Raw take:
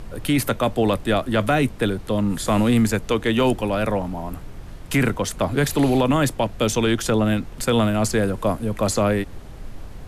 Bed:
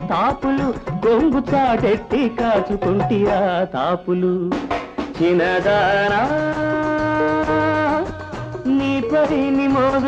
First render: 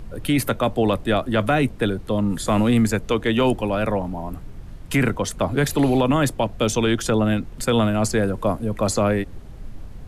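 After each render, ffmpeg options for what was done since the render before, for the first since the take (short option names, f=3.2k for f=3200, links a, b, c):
-af "afftdn=nr=6:nf=-37"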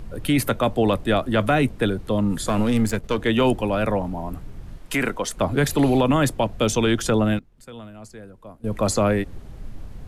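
-filter_complex "[0:a]asettb=1/sr,asplit=3[a][b][c];[a]atrim=end=2.474[d];[b]atrim=start=2.47:end=3.18,asetpts=PTS-STARTPTS,afade=t=in:d=0.004:c=qsin,afade=t=out:st=0.706:d=0.004:c=qsin,aeval=exprs='if(lt(val(0),0),0.447*val(0),val(0))':c=same[e];[c]atrim=start=3.176[f];[d][e]acrossfade=d=0.004:c1=hsin:c2=qsin[g];[g][f]acrossfade=d=0.004:c1=qsin:c2=hsin,asettb=1/sr,asplit=3[h][i][j];[h]atrim=end=4.784[k];[i]atrim=start=4.78:end=5.38,asetpts=PTS-STARTPTS,afade=t=in:d=0.004:c=qsin,afade=t=out:st=0.596:d=0.004:c=qsin,equalizer=f=92:w=0.65:g=-15[l];[j]atrim=start=5.376[m];[k][l]acrossfade=d=0.004:c1=hsin:c2=qsin[n];[n][m]acrossfade=d=0.004:c1=qsin:c2=hsin,asplit=3[o][p][q];[o]atrim=end=7.39,asetpts=PTS-STARTPTS,afade=t=out:st=7.13:d=0.26:c=log:silence=0.0944061[r];[p]atrim=start=7.39:end=8.64,asetpts=PTS-STARTPTS,volume=-20.5dB[s];[q]atrim=start=8.64,asetpts=PTS-STARTPTS,afade=t=in:d=0.26:c=log:silence=0.0944061[t];[r][s][t]concat=n=3:v=0:a=1"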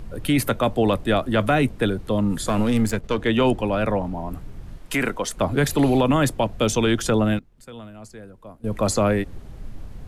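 -filter_complex "[0:a]asettb=1/sr,asplit=3[a][b][c];[a]atrim=end=2.944[d];[b]atrim=start=2.94:end=4.31,asetpts=PTS-STARTPTS,afade=t=in:d=0.004:c=qsin,afade=t=out:st=1.366:d=0.004:c=qsin,highshelf=f=10k:g=-9.5[e];[c]atrim=start=4.306[f];[d][e]acrossfade=d=0.004:c1=hsin:c2=qsin[g];[g][f]acrossfade=d=0.004:c1=qsin:c2=hsin"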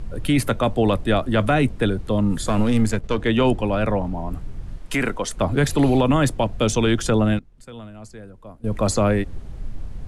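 -af "lowpass=f=11k:w=0.5412,lowpass=f=11k:w=1.3066,lowshelf=f=110:g=6"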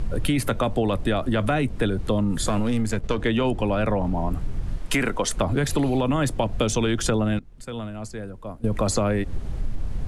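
-filter_complex "[0:a]asplit=2[a][b];[b]alimiter=limit=-15.5dB:level=0:latency=1,volume=-1dB[c];[a][c]amix=inputs=2:normalize=0,acompressor=threshold=-19dB:ratio=6"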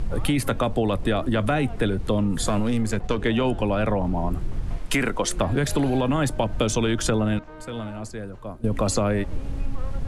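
-filter_complex "[1:a]volume=-25.5dB[a];[0:a][a]amix=inputs=2:normalize=0"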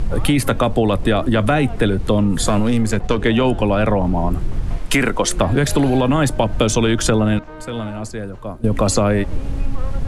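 -af "volume=6.5dB"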